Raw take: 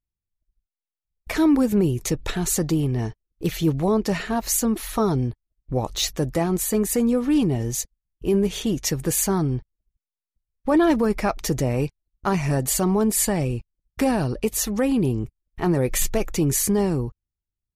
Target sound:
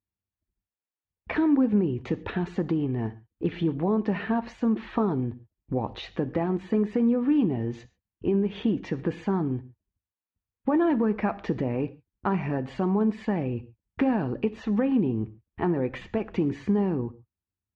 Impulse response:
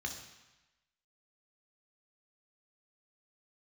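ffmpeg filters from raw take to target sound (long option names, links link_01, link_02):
-filter_complex "[0:a]acompressor=threshold=-26dB:ratio=2.5,highpass=110,equalizer=frequency=140:width_type=q:width=4:gain=-8,equalizer=frequency=600:width_type=q:width=4:gain=-6,equalizer=frequency=1300:width_type=q:width=4:gain=-4,equalizer=frequency=2100:width_type=q:width=4:gain=-4,lowpass=frequency=2500:width=0.5412,lowpass=frequency=2500:width=1.3066,asplit=2[link_01][link_02];[1:a]atrim=start_sample=2205,afade=type=out:start_time=0.19:duration=0.01,atrim=end_sample=8820[link_03];[link_02][link_03]afir=irnorm=-1:irlink=0,volume=-12dB[link_04];[link_01][link_04]amix=inputs=2:normalize=0,volume=4.5dB"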